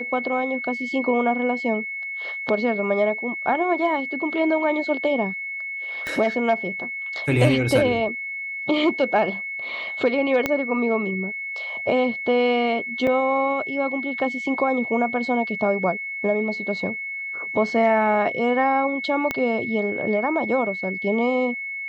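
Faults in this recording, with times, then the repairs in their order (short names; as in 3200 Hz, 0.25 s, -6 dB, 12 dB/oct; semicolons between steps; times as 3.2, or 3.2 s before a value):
tone 2200 Hz -28 dBFS
6.07 pop -15 dBFS
10.46 pop -8 dBFS
13.07 gap 3.4 ms
19.31 pop -10 dBFS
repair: de-click; notch 2200 Hz, Q 30; interpolate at 13.07, 3.4 ms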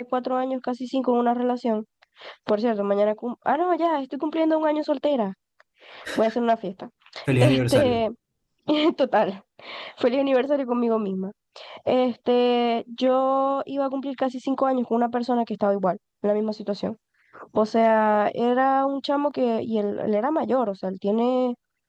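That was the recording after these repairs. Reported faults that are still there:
6.07 pop
10.46 pop
19.31 pop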